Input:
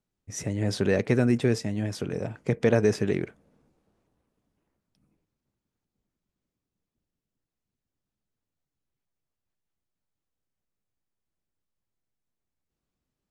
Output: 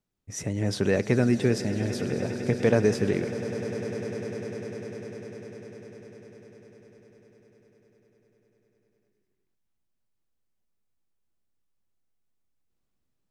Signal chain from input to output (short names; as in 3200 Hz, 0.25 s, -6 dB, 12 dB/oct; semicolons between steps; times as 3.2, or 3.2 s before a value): swelling echo 0.1 s, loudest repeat 8, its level -17.5 dB